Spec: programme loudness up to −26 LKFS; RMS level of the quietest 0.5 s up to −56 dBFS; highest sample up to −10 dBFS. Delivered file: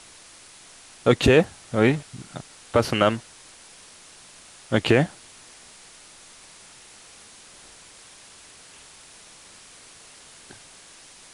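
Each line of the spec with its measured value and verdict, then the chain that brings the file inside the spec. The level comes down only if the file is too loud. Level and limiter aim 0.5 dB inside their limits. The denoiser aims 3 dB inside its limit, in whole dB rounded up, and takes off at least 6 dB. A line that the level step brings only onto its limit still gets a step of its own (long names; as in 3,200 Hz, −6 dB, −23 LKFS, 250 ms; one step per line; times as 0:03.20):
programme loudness −22.0 LKFS: out of spec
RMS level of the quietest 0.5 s −48 dBFS: out of spec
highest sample −5.5 dBFS: out of spec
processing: broadband denoise 7 dB, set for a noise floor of −48 dBFS
level −4.5 dB
brickwall limiter −10.5 dBFS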